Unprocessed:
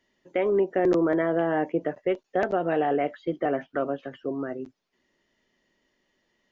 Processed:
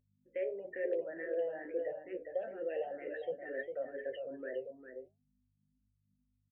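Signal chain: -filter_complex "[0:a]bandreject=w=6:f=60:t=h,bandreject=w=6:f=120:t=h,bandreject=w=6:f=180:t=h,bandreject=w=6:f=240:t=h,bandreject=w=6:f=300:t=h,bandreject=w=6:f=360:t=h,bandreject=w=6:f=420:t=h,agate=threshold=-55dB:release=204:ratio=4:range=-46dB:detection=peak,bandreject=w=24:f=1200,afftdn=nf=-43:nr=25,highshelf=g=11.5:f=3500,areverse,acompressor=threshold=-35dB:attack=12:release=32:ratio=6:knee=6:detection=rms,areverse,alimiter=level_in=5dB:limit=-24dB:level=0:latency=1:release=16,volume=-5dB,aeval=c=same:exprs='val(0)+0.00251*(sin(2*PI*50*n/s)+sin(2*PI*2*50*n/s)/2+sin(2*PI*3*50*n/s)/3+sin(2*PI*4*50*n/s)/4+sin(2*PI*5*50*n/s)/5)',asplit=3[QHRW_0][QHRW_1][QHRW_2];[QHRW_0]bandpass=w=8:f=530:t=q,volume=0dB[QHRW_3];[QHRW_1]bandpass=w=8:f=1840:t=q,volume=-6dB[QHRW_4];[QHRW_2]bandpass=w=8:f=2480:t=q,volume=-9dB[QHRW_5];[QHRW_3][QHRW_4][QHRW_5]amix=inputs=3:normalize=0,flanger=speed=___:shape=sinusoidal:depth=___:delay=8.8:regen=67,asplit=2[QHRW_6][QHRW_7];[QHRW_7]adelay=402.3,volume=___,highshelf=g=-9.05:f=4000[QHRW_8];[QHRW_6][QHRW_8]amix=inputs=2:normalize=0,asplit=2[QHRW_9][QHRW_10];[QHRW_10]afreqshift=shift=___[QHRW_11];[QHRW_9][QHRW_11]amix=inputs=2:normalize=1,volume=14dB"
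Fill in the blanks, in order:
1, 7.4, -7dB, 2.2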